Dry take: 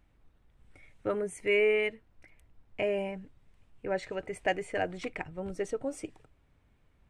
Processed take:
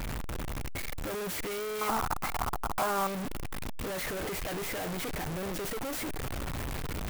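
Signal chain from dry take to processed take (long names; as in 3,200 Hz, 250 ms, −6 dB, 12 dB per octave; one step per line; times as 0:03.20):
sign of each sample alone
0:01.81–0:03.07: flat-topped bell 1,000 Hz +16 dB 1.2 octaves
converter with an unsteady clock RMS 0.044 ms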